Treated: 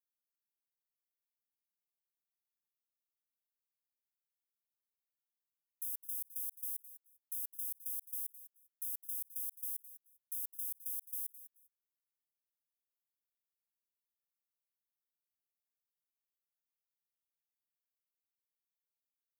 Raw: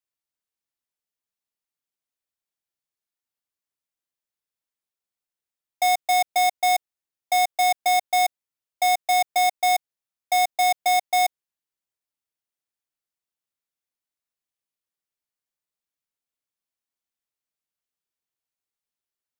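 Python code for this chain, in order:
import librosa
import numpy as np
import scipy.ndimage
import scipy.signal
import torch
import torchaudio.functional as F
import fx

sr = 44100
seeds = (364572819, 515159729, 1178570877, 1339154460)

p1 = scipy.signal.sosfilt(scipy.signal.cheby2(4, 80, 2400.0, 'highpass', fs=sr, output='sos'), x)
p2 = p1 + fx.echo_feedback(p1, sr, ms=208, feedback_pct=17, wet_db=-19.0, dry=0)
p3 = fx.level_steps(p2, sr, step_db=14)
y = F.gain(torch.from_numpy(p3), 2.5).numpy()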